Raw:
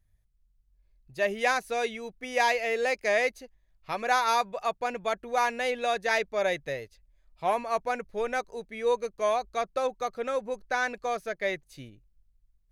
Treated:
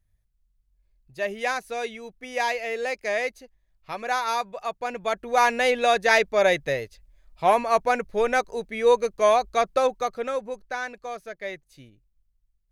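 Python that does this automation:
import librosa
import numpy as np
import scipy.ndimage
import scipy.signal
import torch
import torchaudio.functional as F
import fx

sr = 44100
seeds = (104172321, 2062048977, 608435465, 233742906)

y = fx.gain(x, sr, db=fx.line((4.71, -1.0), (5.52, 7.5), (9.77, 7.5), (10.91, -4.0)))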